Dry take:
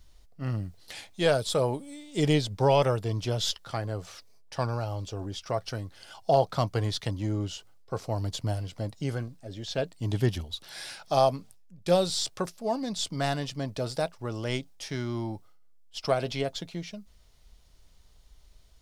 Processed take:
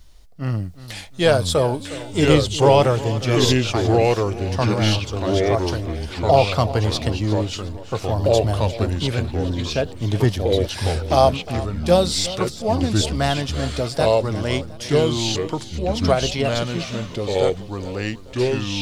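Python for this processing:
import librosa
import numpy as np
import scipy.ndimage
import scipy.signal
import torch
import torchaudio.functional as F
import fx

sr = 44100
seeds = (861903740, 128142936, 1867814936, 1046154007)

p1 = x + fx.echo_feedback(x, sr, ms=357, feedback_pct=42, wet_db=-16.0, dry=0)
p2 = fx.echo_pitch(p1, sr, ms=778, semitones=-3, count=2, db_per_echo=-3.0)
y = p2 * librosa.db_to_amplitude(7.5)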